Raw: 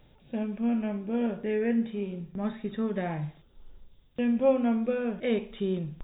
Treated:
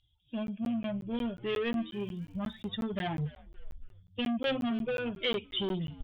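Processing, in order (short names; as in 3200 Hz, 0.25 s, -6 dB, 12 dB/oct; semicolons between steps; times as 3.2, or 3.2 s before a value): per-bin expansion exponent 2; 3.17–4.45 low shelf 73 Hz +9.5 dB; in parallel at +1.5 dB: compressor, threshold -37 dBFS, peak gain reduction 17 dB; on the sum: soft clip -28.5 dBFS, distortion -9 dB; synth low-pass 3200 Hz, resonance Q 7.3; 1.91–2.67 crackle 220/s -55 dBFS; frequency-shifting echo 0.282 s, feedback 36%, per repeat -110 Hz, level -19 dB; crackling interface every 0.18 s, samples 512, zero, from 0.47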